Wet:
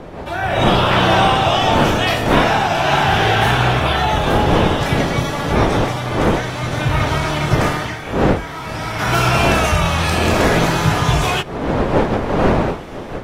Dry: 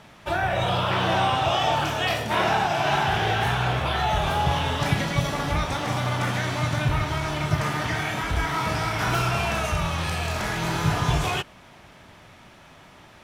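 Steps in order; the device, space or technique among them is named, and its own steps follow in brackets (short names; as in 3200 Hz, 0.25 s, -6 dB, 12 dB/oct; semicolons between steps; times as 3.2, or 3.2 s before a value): smartphone video outdoors (wind noise 560 Hz -24 dBFS; AGC gain up to 13 dB; gain -1 dB; AAC 48 kbps 44100 Hz)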